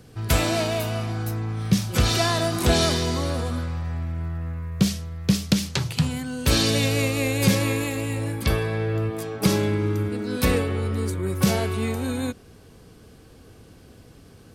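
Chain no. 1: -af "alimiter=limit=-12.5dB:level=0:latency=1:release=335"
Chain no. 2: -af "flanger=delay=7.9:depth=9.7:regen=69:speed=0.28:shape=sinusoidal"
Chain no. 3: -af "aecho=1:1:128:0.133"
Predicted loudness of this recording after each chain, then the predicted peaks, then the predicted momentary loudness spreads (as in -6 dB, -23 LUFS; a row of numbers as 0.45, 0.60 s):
-26.0, -28.5, -24.0 LUFS; -12.5, -10.5, -6.0 dBFS; 6, 9, 9 LU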